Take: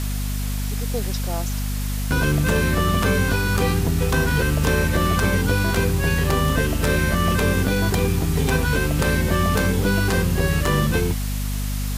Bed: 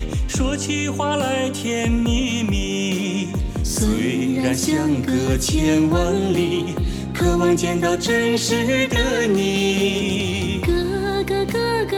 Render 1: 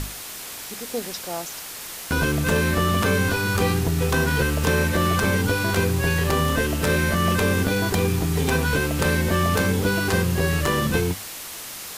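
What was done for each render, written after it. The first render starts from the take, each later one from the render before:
mains-hum notches 50/100/150/200/250 Hz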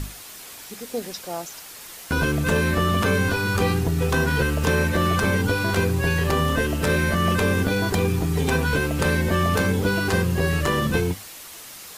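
broadband denoise 6 dB, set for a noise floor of −36 dBFS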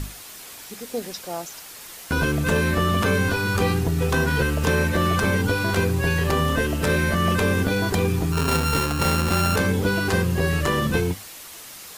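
0:08.32–0:09.56: samples sorted by size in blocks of 32 samples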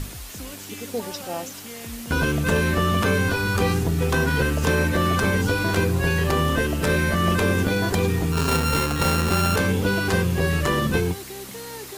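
mix in bed −17.5 dB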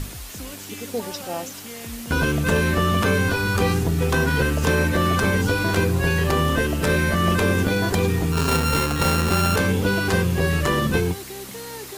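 level +1 dB

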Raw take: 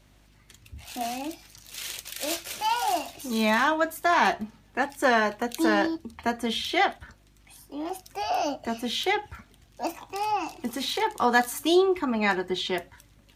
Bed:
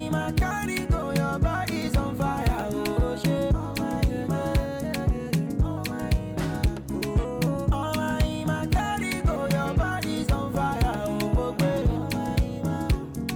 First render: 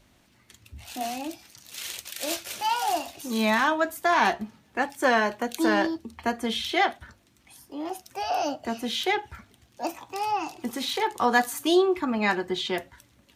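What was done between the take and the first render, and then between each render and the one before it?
hum removal 50 Hz, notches 3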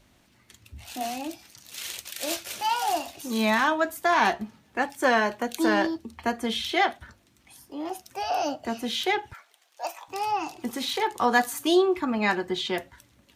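0:09.33–0:10.08: high-pass filter 570 Hz 24 dB per octave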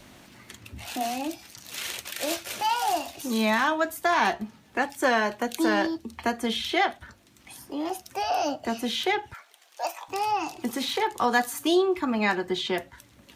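multiband upward and downward compressor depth 40%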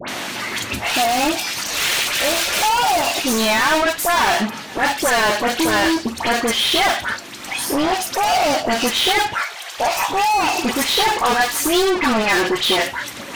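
mid-hump overdrive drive 35 dB, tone 6,200 Hz, clips at −10.5 dBFS
all-pass dispersion highs, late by 84 ms, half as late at 1,800 Hz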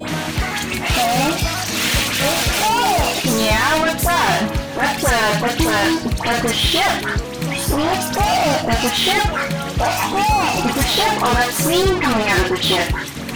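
mix in bed +1.5 dB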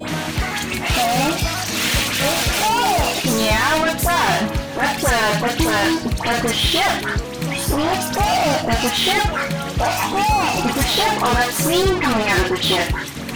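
level −1 dB

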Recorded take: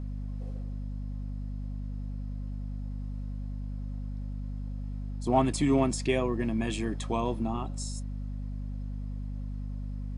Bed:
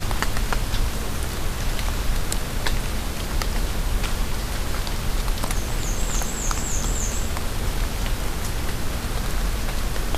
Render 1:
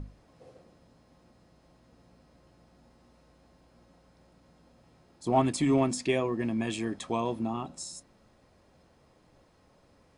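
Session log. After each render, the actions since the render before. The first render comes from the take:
mains-hum notches 50/100/150/200/250 Hz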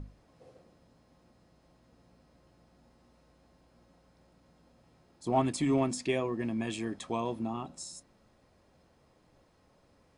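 level −3 dB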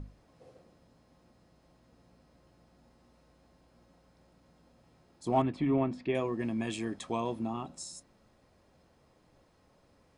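0:05.42–0:06.15: high-frequency loss of the air 380 metres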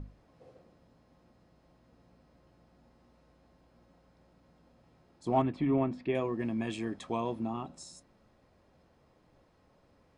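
high-shelf EQ 5,800 Hz −10 dB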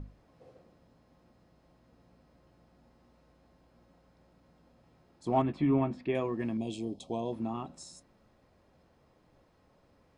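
0:05.47–0:05.97: double-tracking delay 14 ms −7 dB
0:06.57–0:07.33: Chebyshev band-stop filter 720–3,500 Hz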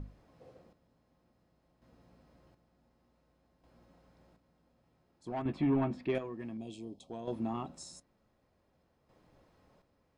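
soft clipping −22.5 dBFS, distortion −15 dB
square-wave tremolo 0.55 Hz, depth 60%, duty 40%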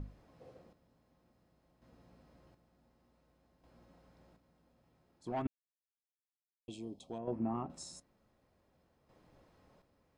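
0:05.47–0:06.68: silence
0:07.18–0:07.70: moving average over 12 samples

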